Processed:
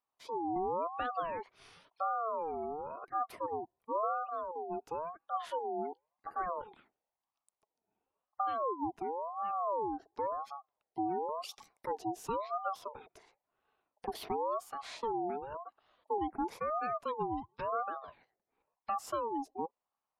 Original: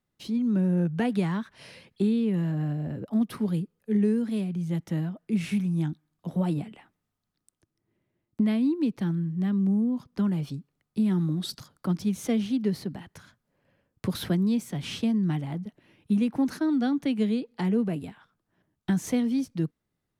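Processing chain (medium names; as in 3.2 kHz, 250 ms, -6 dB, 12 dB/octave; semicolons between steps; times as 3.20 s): spectral gate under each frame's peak -30 dB strong; ring modulator with a swept carrier 760 Hz, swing 30%, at 0.95 Hz; trim -7.5 dB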